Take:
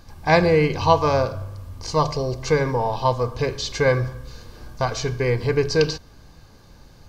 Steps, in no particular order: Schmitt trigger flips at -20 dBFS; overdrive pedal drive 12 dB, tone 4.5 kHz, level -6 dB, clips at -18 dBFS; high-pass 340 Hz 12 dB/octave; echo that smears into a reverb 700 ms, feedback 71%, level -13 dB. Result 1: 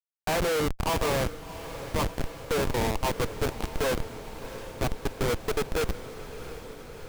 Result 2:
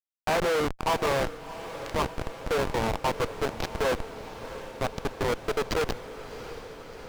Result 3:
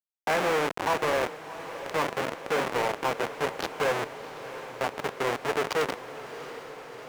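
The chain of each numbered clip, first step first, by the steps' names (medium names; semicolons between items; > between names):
high-pass > overdrive pedal > Schmitt trigger > echo that smears into a reverb; high-pass > Schmitt trigger > overdrive pedal > echo that smears into a reverb; Schmitt trigger > high-pass > overdrive pedal > echo that smears into a reverb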